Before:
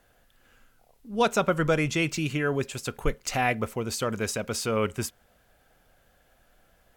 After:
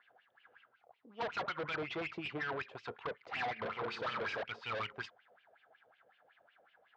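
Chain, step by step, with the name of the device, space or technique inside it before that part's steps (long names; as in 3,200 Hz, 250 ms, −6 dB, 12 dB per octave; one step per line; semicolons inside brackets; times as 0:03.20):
0:03.53–0:04.43: flutter between parallel walls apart 5.4 metres, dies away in 0.67 s
wah-wah guitar rig (LFO wah 5.4 Hz 510–2,900 Hz, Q 5.7; tube saturation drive 44 dB, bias 0.4; loudspeaker in its box 100–4,100 Hz, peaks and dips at 110 Hz +5 dB, 250 Hz −3 dB, 560 Hz −7 dB, 2,600 Hz −4 dB)
level +11 dB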